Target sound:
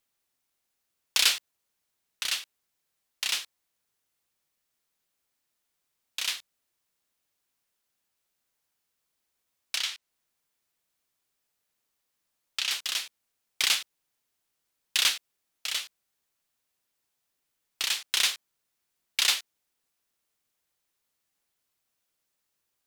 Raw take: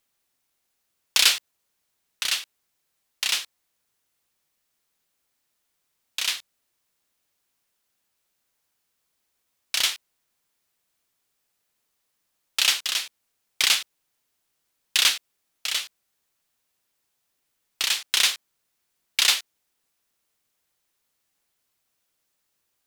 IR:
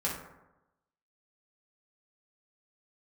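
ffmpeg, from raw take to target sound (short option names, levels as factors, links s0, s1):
-filter_complex "[0:a]asettb=1/sr,asplit=3[s0][s1][s2];[s0]atrim=end=9.764[s3];[s1]atrim=start=9.76:end=12.71,asetpts=PTS-STARTPTS,afade=t=in:d=0.004:c=qsin,afade=t=out:st=2.946:d=0.004:c=qsin,acrossover=split=1000|7400[s4][s5][s6];[s4]acompressor=threshold=0.00224:ratio=4[s7];[s5]acompressor=threshold=0.0794:ratio=4[s8];[s6]acompressor=threshold=0.00631:ratio=4[s9];[s7][s8][s9]amix=inputs=3:normalize=0[s10];[s2]atrim=start=12.706[s11];[s3][s10]acrossfade=d=0.004:c1=hsin:c2=qsin[s12];[s12][s11]acrossfade=d=0.004:c1=qsin:c2=hsin,volume=0.596"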